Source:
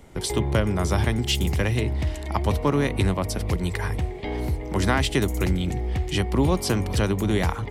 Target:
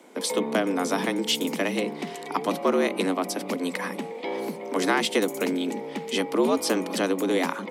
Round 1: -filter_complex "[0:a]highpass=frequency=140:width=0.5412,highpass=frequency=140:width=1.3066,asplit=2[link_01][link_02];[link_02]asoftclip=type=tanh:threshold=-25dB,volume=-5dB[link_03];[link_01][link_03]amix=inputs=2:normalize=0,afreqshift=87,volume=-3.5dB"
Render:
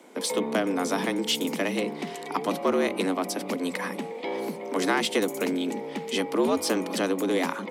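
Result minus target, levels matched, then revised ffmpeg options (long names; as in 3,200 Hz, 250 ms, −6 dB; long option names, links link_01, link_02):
soft clipping: distortion +13 dB
-filter_complex "[0:a]highpass=frequency=140:width=0.5412,highpass=frequency=140:width=1.3066,asplit=2[link_01][link_02];[link_02]asoftclip=type=tanh:threshold=-13.5dB,volume=-5dB[link_03];[link_01][link_03]amix=inputs=2:normalize=0,afreqshift=87,volume=-3.5dB"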